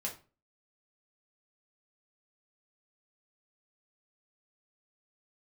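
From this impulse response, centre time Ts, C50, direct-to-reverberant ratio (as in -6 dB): 17 ms, 10.5 dB, -2.5 dB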